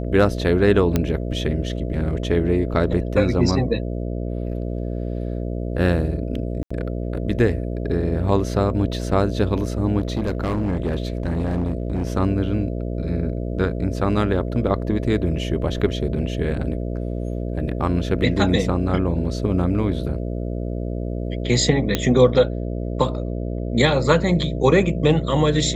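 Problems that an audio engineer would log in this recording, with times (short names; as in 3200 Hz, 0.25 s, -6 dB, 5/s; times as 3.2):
buzz 60 Hz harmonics 11 -26 dBFS
0.96 pop -6 dBFS
6.63–6.71 gap 75 ms
10–12.07 clipped -18 dBFS
21.95 pop -4 dBFS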